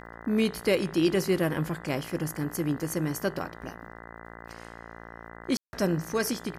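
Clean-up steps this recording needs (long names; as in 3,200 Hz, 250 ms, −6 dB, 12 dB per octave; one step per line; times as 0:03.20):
click removal
hum removal 57.2 Hz, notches 35
ambience match 0:05.57–0:05.73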